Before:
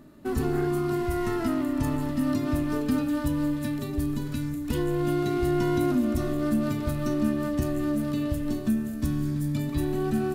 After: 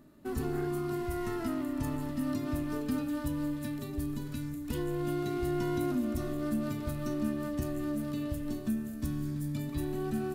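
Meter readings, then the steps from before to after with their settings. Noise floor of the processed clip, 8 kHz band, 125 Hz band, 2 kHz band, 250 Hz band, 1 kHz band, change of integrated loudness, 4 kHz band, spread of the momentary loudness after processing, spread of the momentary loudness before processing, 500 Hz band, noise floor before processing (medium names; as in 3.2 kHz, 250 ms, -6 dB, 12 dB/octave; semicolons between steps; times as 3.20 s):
-40 dBFS, -5.0 dB, -7.0 dB, -7.0 dB, -7.0 dB, -7.0 dB, -7.0 dB, -6.5 dB, 4 LU, 5 LU, -7.0 dB, -33 dBFS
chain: treble shelf 9.1 kHz +4 dB; trim -7 dB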